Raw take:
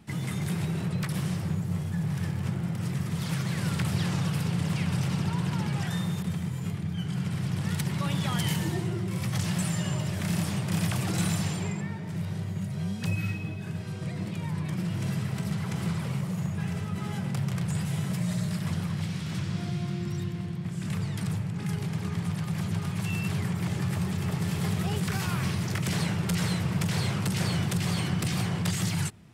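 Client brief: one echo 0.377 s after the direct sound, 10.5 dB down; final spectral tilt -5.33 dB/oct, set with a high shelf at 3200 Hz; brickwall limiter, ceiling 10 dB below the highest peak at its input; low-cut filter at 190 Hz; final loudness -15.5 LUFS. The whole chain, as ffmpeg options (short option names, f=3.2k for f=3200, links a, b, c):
-af "highpass=190,highshelf=f=3.2k:g=-3.5,alimiter=level_in=2dB:limit=-24dB:level=0:latency=1,volume=-2dB,aecho=1:1:377:0.299,volume=20dB"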